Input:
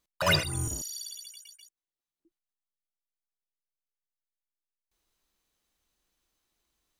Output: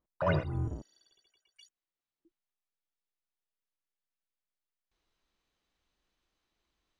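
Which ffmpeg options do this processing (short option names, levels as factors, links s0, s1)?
-af "asetnsamples=n=441:p=0,asendcmd='1.56 lowpass f 4300',lowpass=1000"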